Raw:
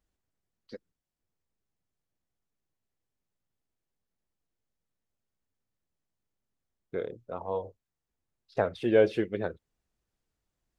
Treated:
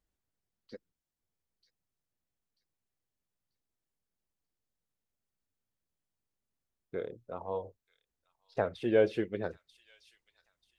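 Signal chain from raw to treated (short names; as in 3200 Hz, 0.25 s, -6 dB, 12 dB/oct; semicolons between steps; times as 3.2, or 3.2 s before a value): thin delay 0.938 s, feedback 32%, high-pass 4800 Hz, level -6.5 dB; gain -3.5 dB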